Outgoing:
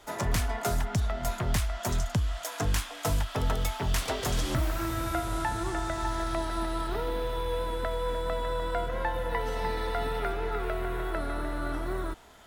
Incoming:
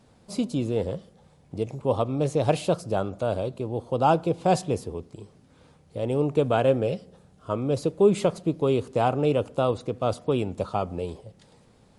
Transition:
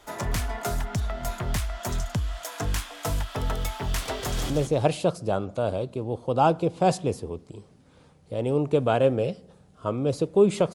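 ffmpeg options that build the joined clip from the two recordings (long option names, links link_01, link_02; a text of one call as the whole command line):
ffmpeg -i cue0.wav -i cue1.wav -filter_complex "[0:a]apad=whole_dur=10.74,atrim=end=10.74,atrim=end=4.502[link_01];[1:a]atrim=start=2.138:end=8.38[link_02];[link_01][link_02]acrossfade=duration=0.004:curve1=hsin:curve2=hsin,asplit=2[link_03][link_04];[link_04]afade=type=in:start_time=4.19:duration=0.01,afade=type=out:start_time=4.5:duration=0.01,aecho=0:1:170|340|510:0.473151|0.0946303|0.0189261[link_05];[link_03][link_05]amix=inputs=2:normalize=0" out.wav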